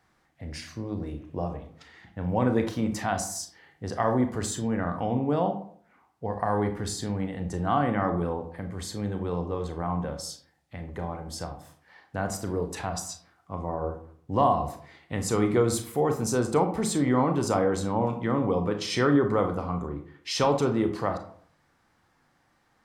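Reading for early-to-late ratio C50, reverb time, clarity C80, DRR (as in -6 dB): 10.0 dB, 0.55 s, 14.0 dB, 6.0 dB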